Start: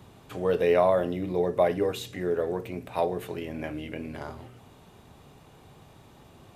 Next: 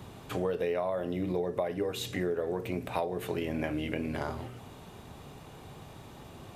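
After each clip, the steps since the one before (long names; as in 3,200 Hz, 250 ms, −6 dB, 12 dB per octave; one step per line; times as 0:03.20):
downward compressor 12 to 1, threshold −32 dBFS, peak gain reduction 15.5 dB
level +4.5 dB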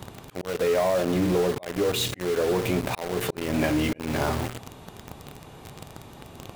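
volume swells 298 ms
in parallel at −5.5 dB: log-companded quantiser 2 bits
on the sum: level +3.5 dB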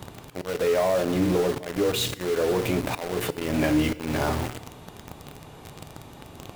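feedback delay network reverb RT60 0.9 s, high-frequency decay 1×, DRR 14.5 dB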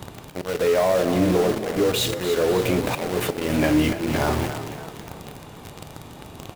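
echo with shifted repeats 284 ms, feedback 48%, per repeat +33 Hz, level −11 dB
level +3 dB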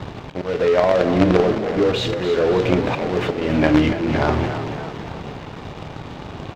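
in parallel at −8 dB: log-companded quantiser 2 bits
on the sum: high-frequency loss of the air 180 metres
level +2 dB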